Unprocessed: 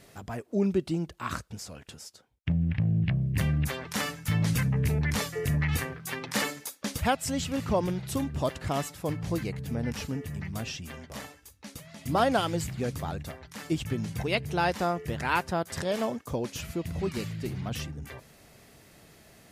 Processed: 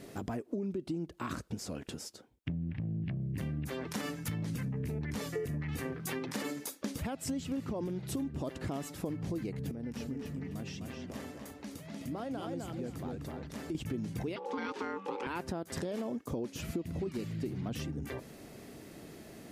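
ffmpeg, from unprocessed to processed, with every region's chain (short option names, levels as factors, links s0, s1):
-filter_complex "[0:a]asettb=1/sr,asplit=3[s0][s1][s2];[s0]atrim=end=9.714[s3];[s1]atrim=start=9.71:end=13.75,asetpts=PTS-STARTPTS,afade=t=in:d=0.004:c=qsin,afade=t=out:st=4.036:d=0.004:c=qsin,acompressor=threshold=0.00355:ratio=2.5:attack=3.2:release=140:knee=1:detection=peak,asplit=2[s4][s5];[s5]adelay=256,lowpass=f=3600:p=1,volume=0.668,asplit=2[s6][s7];[s7]adelay=256,lowpass=f=3600:p=1,volume=0.28,asplit=2[s8][s9];[s9]adelay=256,lowpass=f=3600:p=1,volume=0.28,asplit=2[s10][s11];[s11]adelay=256,lowpass=f=3600:p=1,volume=0.28[s12];[s4][s6][s8][s10][s12]amix=inputs=5:normalize=0,atrim=end_sample=178164[s13];[s2]atrim=start=13.746[s14];[s3][s13]acrossfade=d=0.004:c1=hsin:c2=qsin[s15];[s15][s14]acrossfade=d=0.004:c1=qsin:c2=hsin,asettb=1/sr,asplit=3[s16][s17][s18];[s16]atrim=end=14.364[s19];[s17]atrim=start=14.36:end=15.27,asetpts=PTS-STARTPTS,afade=t=in:d=0.004:c=qsin,afade=t=out:st=0.906:d=0.004:c=qsin,afreqshift=42,aeval=exprs='val(0)*sin(2*PI*670*n/s)':c=same,highpass=260,lowpass=5400[s20];[s18]atrim=start=15.266[s21];[s19][s20]acrossfade=d=0.004:c1=hsin:c2=qsin[s22];[s22][s21]acrossfade=d=0.004:c1=qsin:c2=hsin,alimiter=limit=0.0631:level=0:latency=1:release=32,equalizer=f=300:t=o:w=1.6:g=11.5,acompressor=threshold=0.02:ratio=6"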